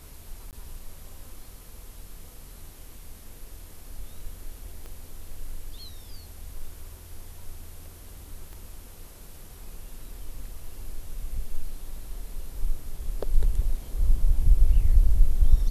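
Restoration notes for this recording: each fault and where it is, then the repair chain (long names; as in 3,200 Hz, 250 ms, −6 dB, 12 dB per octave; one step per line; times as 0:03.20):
0:00.51–0:00.53: drop-out 18 ms
0:04.86: click −28 dBFS
0:08.53: click −31 dBFS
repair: click removal
repair the gap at 0:00.51, 18 ms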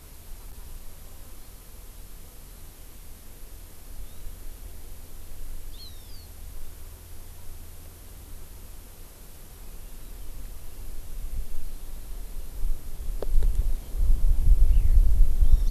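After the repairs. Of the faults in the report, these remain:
0:04.86: click
0:08.53: click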